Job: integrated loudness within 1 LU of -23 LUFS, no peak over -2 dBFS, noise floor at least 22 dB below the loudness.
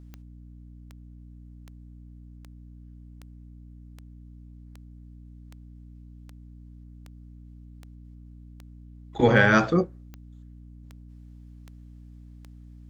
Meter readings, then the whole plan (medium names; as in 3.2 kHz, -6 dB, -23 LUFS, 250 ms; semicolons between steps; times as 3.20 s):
clicks found 17; hum 60 Hz; highest harmonic 300 Hz; hum level -44 dBFS; loudness -21.5 LUFS; peak level -3.5 dBFS; loudness target -23.0 LUFS
-> de-click; hum notches 60/120/180/240/300 Hz; trim -1.5 dB